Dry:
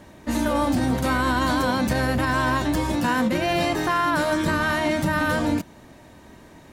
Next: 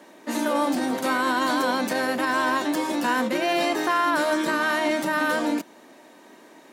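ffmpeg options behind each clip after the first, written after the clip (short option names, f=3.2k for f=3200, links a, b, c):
-af "highpass=f=260:w=0.5412,highpass=f=260:w=1.3066"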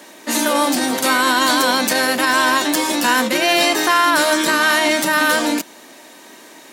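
-af "highshelf=f=2.1k:g=12,volume=4.5dB"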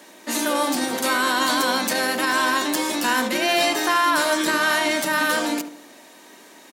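-filter_complex "[0:a]asplit=2[a][b];[b]adelay=71,lowpass=f=1.4k:p=1,volume=-7.5dB,asplit=2[c][d];[d]adelay=71,lowpass=f=1.4k:p=1,volume=0.47,asplit=2[e][f];[f]adelay=71,lowpass=f=1.4k:p=1,volume=0.47,asplit=2[g][h];[h]adelay=71,lowpass=f=1.4k:p=1,volume=0.47,asplit=2[i][j];[j]adelay=71,lowpass=f=1.4k:p=1,volume=0.47[k];[a][c][e][g][i][k]amix=inputs=6:normalize=0,volume=-5.5dB"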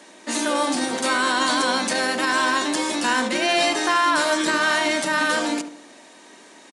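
-af "aresample=22050,aresample=44100"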